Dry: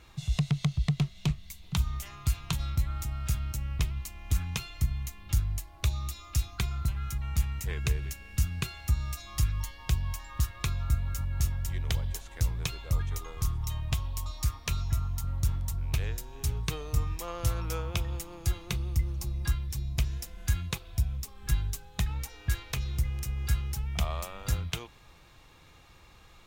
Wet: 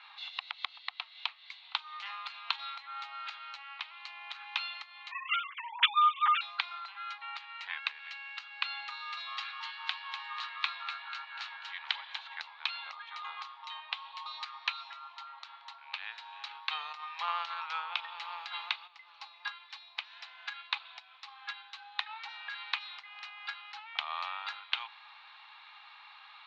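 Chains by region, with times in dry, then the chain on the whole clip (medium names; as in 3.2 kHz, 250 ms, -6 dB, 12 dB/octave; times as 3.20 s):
5.11–6.41 s: formants replaced by sine waves + comb 7.3 ms, depth 97% + upward expansion, over -37 dBFS
8.84–12.19 s: high-pass 670 Hz 6 dB/octave + frequency-shifting echo 245 ms, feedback 55%, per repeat +100 Hz, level -10 dB
16.46–18.86 s: whistle 12 kHz -32 dBFS + level flattener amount 100%
whole clip: compression, threshold -30 dBFS; Chebyshev band-pass 820–4200 Hz, order 4; trim +7.5 dB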